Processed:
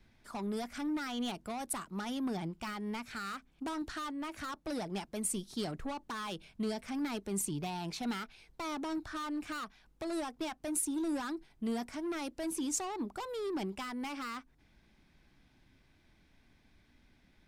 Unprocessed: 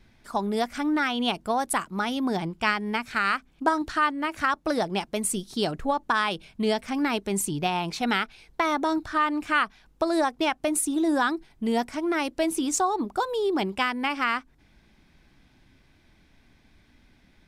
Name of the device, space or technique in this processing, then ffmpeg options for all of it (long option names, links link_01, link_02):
one-band saturation: -filter_complex "[0:a]acrossover=split=280|4700[link_01][link_02][link_03];[link_02]asoftclip=type=tanh:threshold=-31dB[link_04];[link_01][link_04][link_03]amix=inputs=3:normalize=0,volume=-7dB"